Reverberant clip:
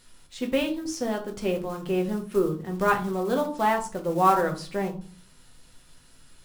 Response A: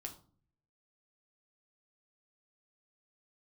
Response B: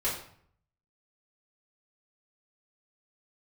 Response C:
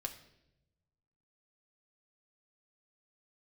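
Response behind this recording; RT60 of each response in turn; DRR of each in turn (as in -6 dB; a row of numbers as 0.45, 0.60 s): A; 0.45, 0.60, 0.85 s; 2.0, -10.5, 2.5 dB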